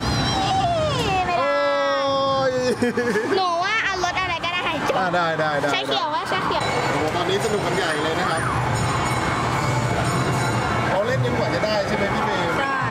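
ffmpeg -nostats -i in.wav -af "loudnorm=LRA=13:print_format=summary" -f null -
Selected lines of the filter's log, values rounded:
Input Integrated:    -21.1 LUFS
Input True Peak:      -7.7 dBTP
Input LRA:             1.0 LU
Input Threshold:     -31.1 LUFS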